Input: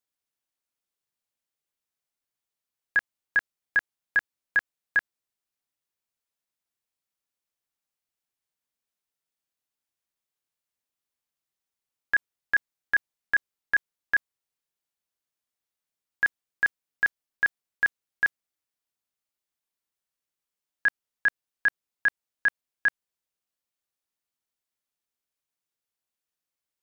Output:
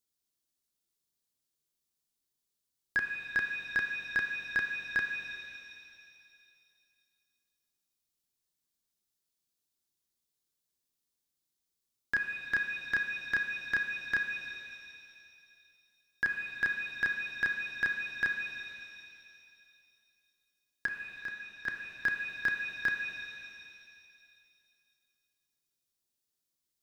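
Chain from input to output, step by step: band shelf 1200 Hz -8.5 dB 2.8 oct; in parallel at -8.5 dB: soft clip -26 dBFS, distortion -20 dB; 20.86–21.68 on the sum: resonator 210 Hz, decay 0.92 s, mix 70%; shimmer reverb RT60 2.4 s, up +7 st, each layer -8 dB, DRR 4 dB

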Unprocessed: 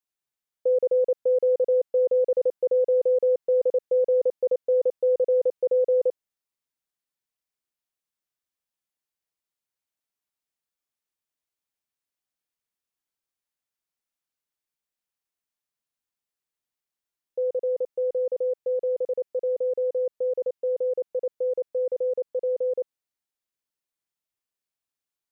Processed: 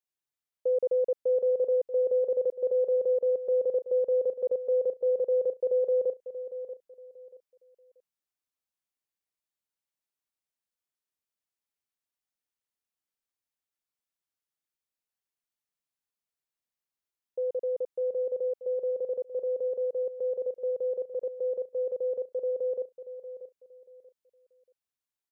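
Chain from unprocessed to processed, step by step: feedback echo 0.634 s, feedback 26%, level -12 dB; gain -4.5 dB

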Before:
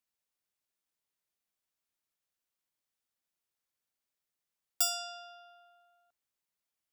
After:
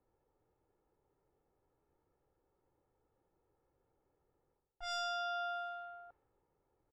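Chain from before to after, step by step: in parallel at +2 dB: limiter -27 dBFS, peak gain reduction 10.5 dB; on the sum: soft clip -27 dBFS, distortion -8 dB; reverse; compressor 12:1, threshold -47 dBFS, peak gain reduction 18 dB; reverse; LPF 1100 Hz 6 dB/oct; low-pass opened by the level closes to 680 Hz, open at -51 dBFS; comb 2.3 ms, depth 59%; gain +16.5 dB

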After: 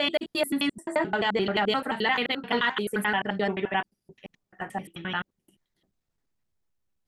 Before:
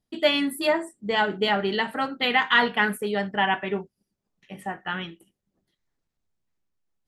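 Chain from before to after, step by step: slices in reverse order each 87 ms, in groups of 4; limiter -15.5 dBFS, peak gain reduction 7.5 dB

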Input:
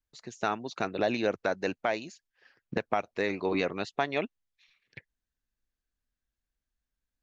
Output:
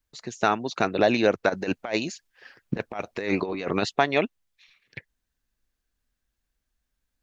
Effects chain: 1.49–3.93 negative-ratio compressor -33 dBFS, ratio -0.5; gain +7.5 dB

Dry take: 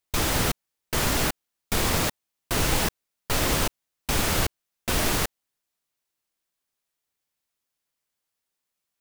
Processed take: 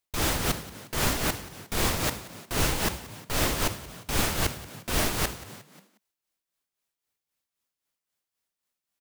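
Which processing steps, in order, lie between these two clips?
frequency-shifting echo 0.179 s, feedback 40%, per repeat +46 Hz, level -12 dB; tremolo 3.8 Hz, depth 58%

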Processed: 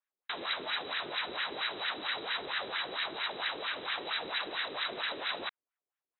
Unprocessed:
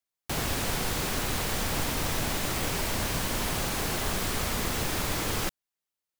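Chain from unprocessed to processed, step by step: inverted band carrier 3900 Hz; LFO band-pass sine 4.4 Hz 360–1800 Hz; gain +6.5 dB

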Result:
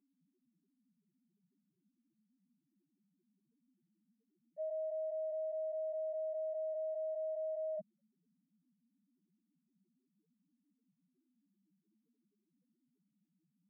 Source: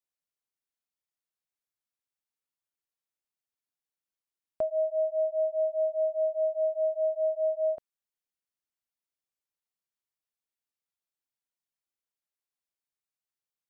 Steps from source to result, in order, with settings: ladder band-pass 240 Hz, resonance 40%; loudest bins only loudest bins 1; fast leveller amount 100%; gain +10.5 dB

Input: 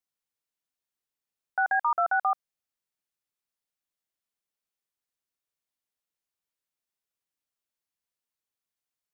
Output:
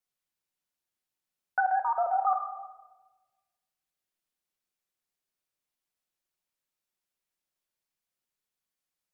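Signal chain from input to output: vibrato 12 Hz 43 cents; 1.6–2.27 fixed phaser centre 630 Hz, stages 4; reverb RT60 1.3 s, pre-delay 5 ms, DRR 4 dB

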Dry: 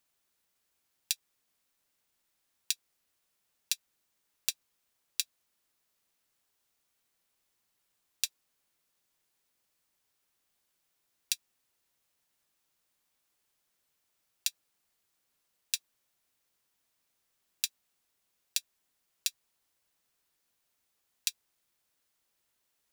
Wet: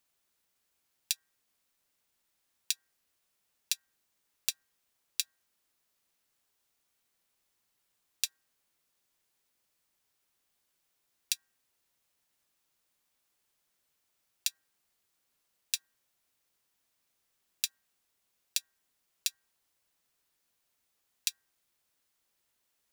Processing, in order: de-hum 157.8 Hz, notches 12

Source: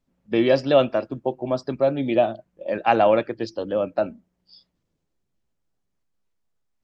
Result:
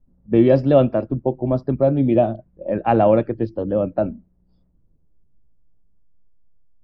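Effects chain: low-pass opened by the level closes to 1400 Hz, open at -14 dBFS; tilt -4.5 dB/oct; gain -1.5 dB

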